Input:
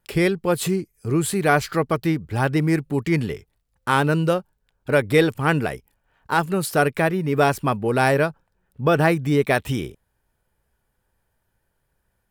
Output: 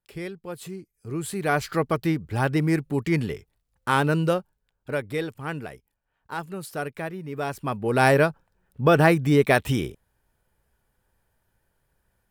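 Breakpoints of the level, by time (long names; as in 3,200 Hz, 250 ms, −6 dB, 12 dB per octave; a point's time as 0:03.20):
0:00.68 −15 dB
0:01.79 −2.5 dB
0:04.38 −2.5 dB
0:05.19 −12 dB
0:07.42 −12 dB
0:08.06 +0.5 dB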